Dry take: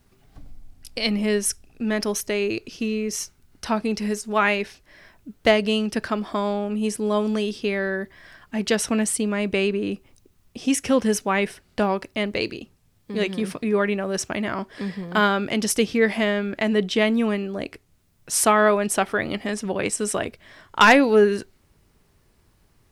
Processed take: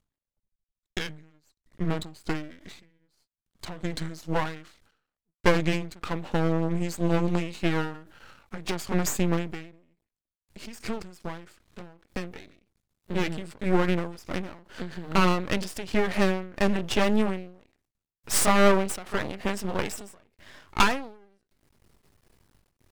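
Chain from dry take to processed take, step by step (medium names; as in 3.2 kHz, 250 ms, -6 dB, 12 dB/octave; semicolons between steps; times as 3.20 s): pitch bend over the whole clip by -5.5 st ending unshifted; half-wave rectifier; endings held to a fixed fall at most 100 dB/s; trim +3.5 dB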